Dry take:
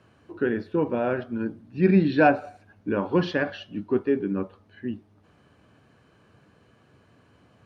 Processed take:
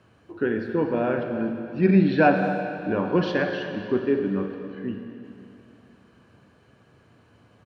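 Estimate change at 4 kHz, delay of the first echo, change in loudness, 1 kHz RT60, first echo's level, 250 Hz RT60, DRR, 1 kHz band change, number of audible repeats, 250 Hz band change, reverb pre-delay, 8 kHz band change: +1.0 dB, 0.256 s, +1.0 dB, 2.9 s, -16.0 dB, 3.0 s, 4.5 dB, +1.0 dB, 1, +1.5 dB, 37 ms, n/a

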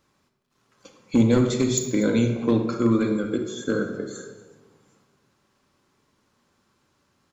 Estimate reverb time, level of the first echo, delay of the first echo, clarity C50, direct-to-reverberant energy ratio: 1.2 s, -18.0 dB, 0.242 s, 6.0 dB, 4.0 dB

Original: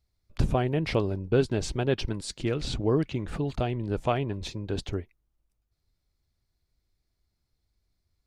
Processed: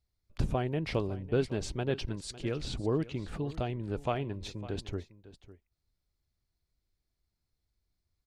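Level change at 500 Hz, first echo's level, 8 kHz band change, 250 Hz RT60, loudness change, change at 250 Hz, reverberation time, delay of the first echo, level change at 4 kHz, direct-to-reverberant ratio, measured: -5.5 dB, -17.0 dB, -5.5 dB, none, -5.5 dB, -5.5 dB, none, 0.553 s, -5.5 dB, none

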